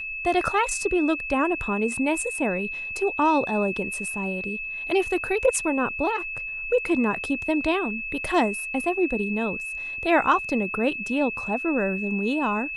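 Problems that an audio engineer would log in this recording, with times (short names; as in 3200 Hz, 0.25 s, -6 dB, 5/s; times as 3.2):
tone 2600 Hz -30 dBFS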